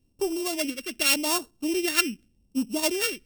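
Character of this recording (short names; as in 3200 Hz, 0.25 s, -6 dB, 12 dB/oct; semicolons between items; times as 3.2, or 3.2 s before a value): a buzz of ramps at a fixed pitch in blocks of 16 samples; phasing stages 2, 0.86 Hz, lowest notch 800–1900 Hz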